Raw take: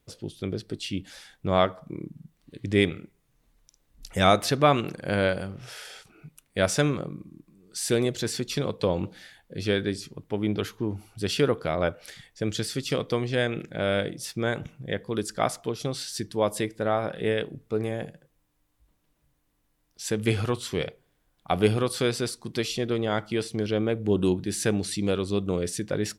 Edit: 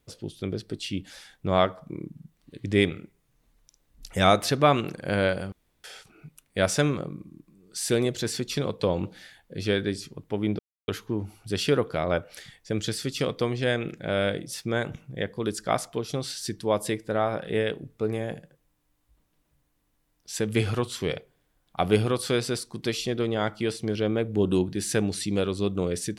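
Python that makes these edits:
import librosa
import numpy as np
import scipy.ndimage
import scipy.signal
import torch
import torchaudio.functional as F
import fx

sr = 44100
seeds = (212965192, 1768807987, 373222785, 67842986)

y = fx.edit(x, sr, fx.room_tone_fill(start_s=5.52, length_s=0.32),
    fx.insert_silence(at_s=10.59, length_s=0.29), tone=tone)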